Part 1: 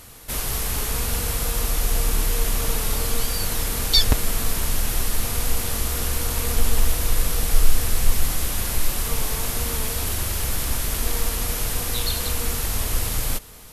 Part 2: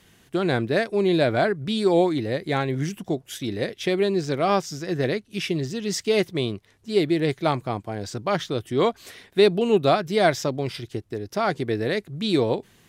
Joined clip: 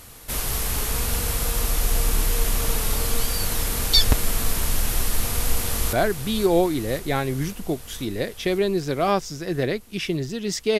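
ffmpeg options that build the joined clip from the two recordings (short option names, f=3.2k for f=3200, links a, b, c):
-filter_complex "[0:a]apad=whole_dur=10.79,atrim=end=10.79,atrim=end=5.932[a];[1:a]atrim=start=1.338:end=6.2[b];[a][b]acrossfade=d=0.004:c1=hsin:c2=hsin,asplit=2[c][d];[d]afade=t=in:st=5.29:d=0.01,afade=t=out:st=5.93:d=0.01,aecho=0:1:530|1060|1590|2120|2650|3180|3710|4240|4770|5300|5830|6360:0.354813|0.26611|0.199583|0.149687|0.112265|0.0841989|0.0631492|0.0473619|0.0355214|0.0266411|0.0199808|0.0149856[e];[c][e]amix=inputs=2:normalize=0"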